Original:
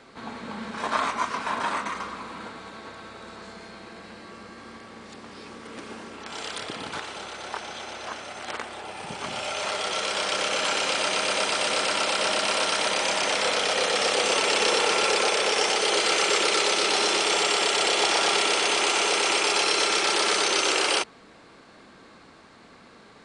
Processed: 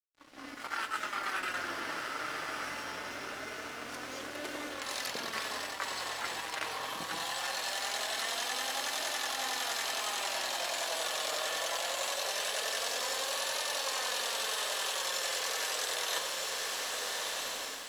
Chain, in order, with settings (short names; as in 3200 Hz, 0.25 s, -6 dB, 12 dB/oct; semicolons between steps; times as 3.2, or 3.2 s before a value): opening faded in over 1.31 s; flange 0.17 Hz, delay 4.2 ms, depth 4.4 ms, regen +56%; on a send: diffused feedback echo 1.581 s, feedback 40%, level -11 dB; on the sum: varispeed +30%; AGC gain up to 4.5 dB; low shelf 71 Hz +10.5 dB; reverse; compressor 6:1, threshold -35 dBFS, peak gain reduction 16 dB; reverse; low shelf 270 Hz -7 dB; notches 50/100/150/200/250/300 Hz; crossover distortion -53.5 dBFS; gain +3.5 dB